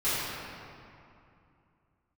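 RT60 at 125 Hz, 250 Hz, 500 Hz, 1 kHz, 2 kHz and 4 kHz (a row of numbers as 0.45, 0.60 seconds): 3.2, 3.0, 2.5, 2.7, 2.2, 1.6 seconds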